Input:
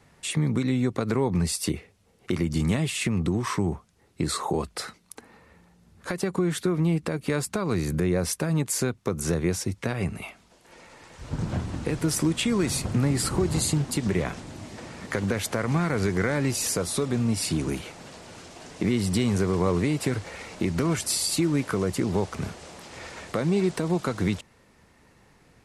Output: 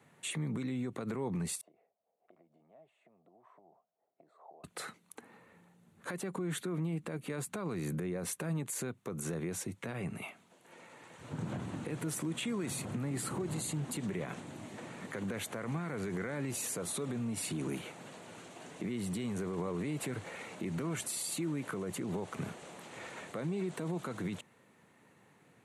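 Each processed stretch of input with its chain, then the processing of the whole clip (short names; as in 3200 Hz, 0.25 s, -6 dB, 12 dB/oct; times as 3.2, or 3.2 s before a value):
1.61–4.64 compressor 5:1, threshold -35 dBFS + band-pass 670 Hz, Q 7.7
whole clip: bell 5100 Hz -12.5 dB 0.4 oct; limiter -23 dBFS; HPF 120 Hz 24 dB/oct; gain -5 dB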